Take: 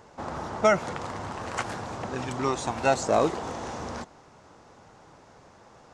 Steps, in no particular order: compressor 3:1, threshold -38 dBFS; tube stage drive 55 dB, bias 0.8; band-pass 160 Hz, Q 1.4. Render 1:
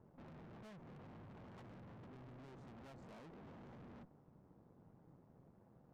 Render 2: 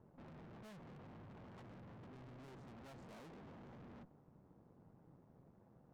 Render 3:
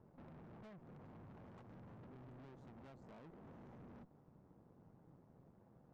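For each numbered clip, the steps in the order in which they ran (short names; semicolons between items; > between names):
band-pass > compressor > tube stage; band-pass > tube stage > compressor; compressor > band-pass > tube stage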